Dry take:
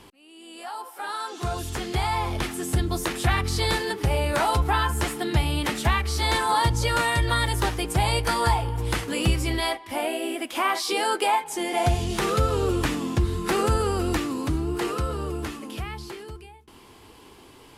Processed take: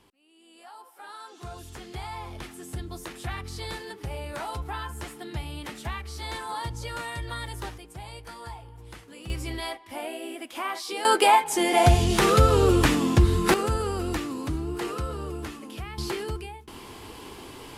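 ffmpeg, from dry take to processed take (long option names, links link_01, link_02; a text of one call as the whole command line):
ffmpeg -i in.wav -af "asetnsamples=nb_out_samples=441:pad=0,asendcmd='7.78 volume volume -18.5dB;9.3 volume volume -7.5dB;11.05 volume volume 4.5dB;13.54 volume volume -4dB;15.98 volume volume 7dB',volume=-11.5dB" out.wav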